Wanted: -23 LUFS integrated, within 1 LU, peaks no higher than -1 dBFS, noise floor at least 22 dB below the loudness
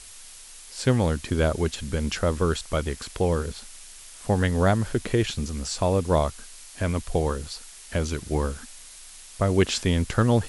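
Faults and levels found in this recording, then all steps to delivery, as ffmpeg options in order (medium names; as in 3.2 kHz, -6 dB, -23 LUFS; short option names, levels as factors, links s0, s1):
noise floor -45 dBFS; noise floor target -48 dBFS; loudness -25.5 LUFS; peak level -7.5 dBFS; loudness target -23.0 LUFS
-> -af "afftdn=nr=6:nf=-45"
-af "volume=1.33"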